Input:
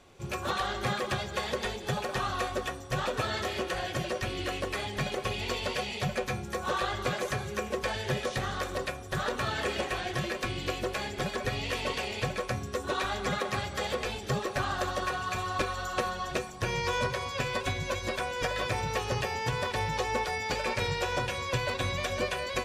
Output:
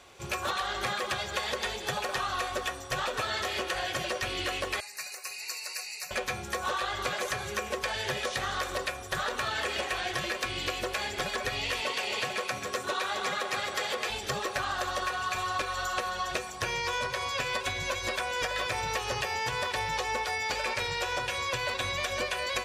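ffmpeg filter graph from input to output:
-filter_complex "[0:a]asettb=1/sr,asplit=3[a][b][c];[a]atrim=end=4.804[d];[b]atrim=start=4.8:end=6.11,asetpts=PTS-STARTPTS,afade=t=in:d=0.004:c=qsin,afade=t=out:st=1.306:d=0.004:c=qsin,asuperstop=centerf=3300:order=8:qfactor=2.9,aderivative[e];[c]atrim=start=6.106[f];[d][e]acrossfade=d=0.004:c1=hsin:c2=qsin[g];[g][f]acrossfade=d=0.004:c1=qsin:c2=hsin,asettb=1/sr,asplit=3[h][i][j];[h]atrim=end=11.814[k];[i]atrim=start=11.81:end=14.1,asetpts=PTS-STARTPTS,afade=t=in:d=0.004:c=qsin,afade=t=out:st=2.286:d=0.004:c=qsin,highpass=150,aecho=1:1:266:0.422,atrim=end_sample=100989[l];[j]atrim=start=14.096[m];[k][l]acrossfade=d=0.004:c1=hsin:c2=qsin[n];[n][m]acrossfade=d=0.004:c1=qsin:c2=hsin,highpass=47,equalizer=f=160:w=0.42:g=-12,acompressor=threshold=-35dB:ratio=6,volume=7dB"

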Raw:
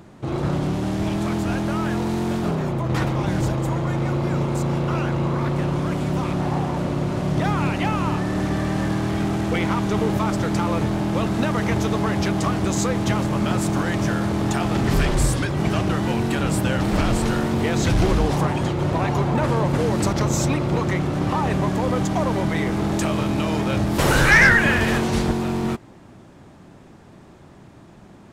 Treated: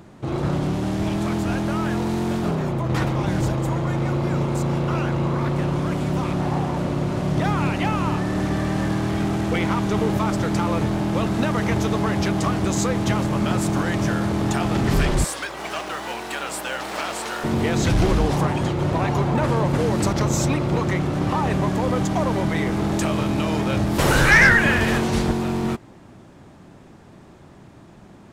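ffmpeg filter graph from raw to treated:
-filter_complex "[0:a]asettb=1/sr,asplit=3[a][b][c];[a]atrim=end=15.244[d];[b]atrim=start=15.24:end=17.44,asetpts=PTS-STARTPTS,afade=t=in:d=0.004:c=qsin,afade=t=out:st=2.196:d=0.004:c=qsin,highpass=640,aeval=exprs='val(0)+0.00398*(sin(2*PI*60*n/s)+sin(2*PI*2*60*n/s)/2+sin(2*PI*3*60*n/s)/3+sin(2*PI*4*60*n/s)/4+sin(2*PI*5*60*n/s)/5)':c=same,acrusher=bits=7:mode=log:mix=0:aa=0.000001[e];[c]atrim=start=17.436[f];[d][e]acrossfade=d=0.004:c1=hsin:c2=qsin[g];[g][f]acrossfade=d=0.004:c1=qsin:c2=hsin"

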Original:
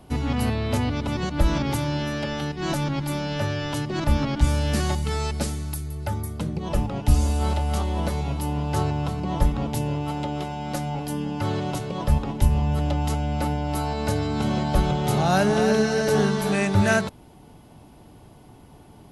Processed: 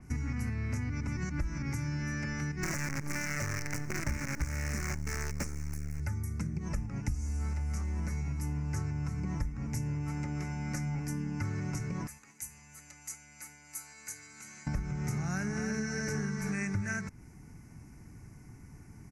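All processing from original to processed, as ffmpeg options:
-filter_complex "[0:a]asettb=1/sr,asplit=3[a][b][c];[a]atrim=end=2.634[d];[b]atrim=start=2.63:end=6,asetpts=PTS-STARTPTS,afade=t=in:d=0.004:c=qsin,afade=t=out:st=3.366:d=0.004:c=qsin,equalizer=f=550:w=1.4:g=12,acrusher=bits=4:dc=4:mix=0:aa=0.000001[e];[c]atrim=start=5.996[f];[d][e]acrossfade=d=0.004:c1=hsin:c2=qsin[g];[g][f]acrossfade=d=0.004:c1=qsin:c2=hsin,asettb=1/sr,asplit=3[h][i][j];[h]atrim=end=12.074[k];[i]atrim=start=12.07:end=14.67,asetpts=PTS-STARTPTS,afade=t=in:d=0.004:c=qsin,afade=t=out:st=2.596:d=0.004:c=qsin,asuperstop=centerf=5400:order=4:qfactor=7.4,aderivative[l];[j]atrim=start=14.666[m];[k][l]acrossfade=d=0.004:c1=hsin:c2=qsin[n];[n][m]acrossfade=d=0.004:c1=qsin:c2=hsin,firequalizer=gain_entry='entry(130,0);entry(590,-18);entry(1500,-2);entry(2200,2);entry(3300,-29);entry(5700,5);entry(10000,-6)':delay=0.05:min_phase=1,acompressor=threshold=-31dB:ratio=6,adynamicequalizer=threshold=0.00178:dfrequency=5500:dqfactor=0.7:tfrequency=5500:tqfactor=0.7:attack=5:release=100:ratio=0.375:range=2:mode=cutabove:tftype=highshelf"

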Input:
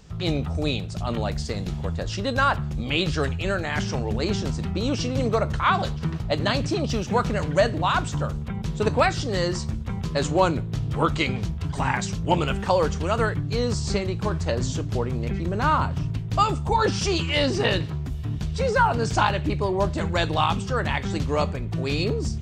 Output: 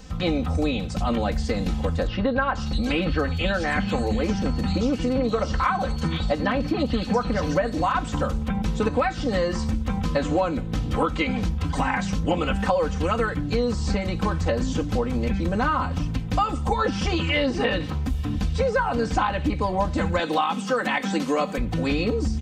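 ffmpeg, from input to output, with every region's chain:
-filter_complex "[0:a]asettb=1/sr,asplit=3[a][b][c];[a]atrim=end=2.074[d];[b]atrim=start=2.07:end=7.95,asetpts=PTS-STARTPTS,afade=t=in:d=0.004:c=qsin,afade=t=out:st=5.876:d=0.004:c=qsin,aeval=exprs='val(0)+0.00251*sin(2*PI*4400*n/s)':c=same,acrossover=split=3100[e][f];[f]adelay=480[g];[e][g]amix=inputs=2:normalize=0,atrim=end_sample=259308[h];[c]atrim=start=7.946[i];[d][h]acrossfade=d=0.004:c1=hsin:c2=qsin[j];[j][i]acrossfade=d=0.004:c1=qsin:c2=hsin,asettb=1/sr,asplit=3[k][l][m];[k]atrim=end=20.194[n];[l]atrim=start=20.19:end=21.58,asetpts=PTS-STARTPTS,afade=t=in:d=0.004:c=qsin,afade=t=out:st=1.386:d=0.004:c=qsin,highpass=f=190:w=0.5412,highpass=f=190:w=1.3066,highshelf=f=6.4k:g=11.5[o];[m]atrim=start=21.576[p];[n][o]acrossfade=d=0.004:c1=hsin:c2=qsin[q];[q][p]acrossfade=d=0.004:c1=qsin:c2=hsin,acrossover=split=3000[r][s];[s]acompressor=threshold=-44dB:ratio=4:attack=1:release=60[t];[r][t]amix=inputs=2:normalize=0,aecho=1:1:3.9:0.92,acompressor=threshold=-24dB:ratio=6,volume=4.5dB"

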